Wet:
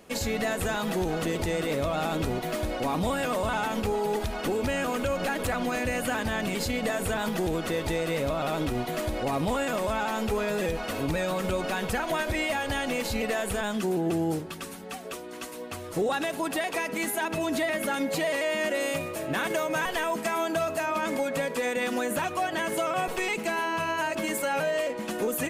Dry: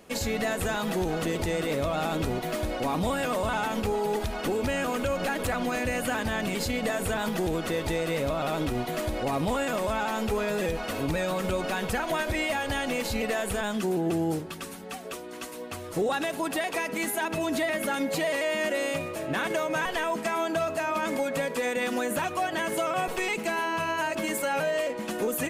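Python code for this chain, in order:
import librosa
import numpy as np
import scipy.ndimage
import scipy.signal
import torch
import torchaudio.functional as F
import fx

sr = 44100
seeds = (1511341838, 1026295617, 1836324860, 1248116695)

y = fx.high_shelf(x, sr, hz=9300.0, db=7.0, at=(18.8, 20.86))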